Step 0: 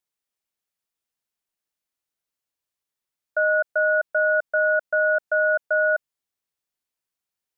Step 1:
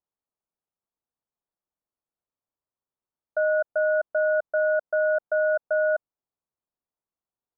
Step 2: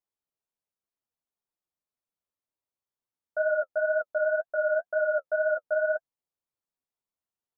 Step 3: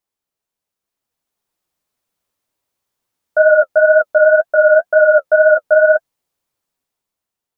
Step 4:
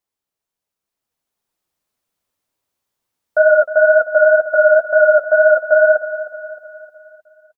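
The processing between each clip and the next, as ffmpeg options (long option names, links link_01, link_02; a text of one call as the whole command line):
ffmpeg -i in.wav -af "lowpass=frequency=1200:width=0.5412,lowpass=frequency=1200:width=1.3066" out.wav
ffmpeg -i in.wav -af "flanger=delay=7.4:depth=6.1:regen=20:speed=2:shape=triangular" out.wav
ffmpeg -i in.wav -af "dynaudnorm=framelen=270:gausssize=9:maxgain=7.5dB,volume=8.5dB" out.wav
ffmpeg -i in.wav -af "aecho=1:1:309|618|927|1236|1545:0.211|0.104|0.0507|0.0249|0.0122,volume=-1dB" out.wav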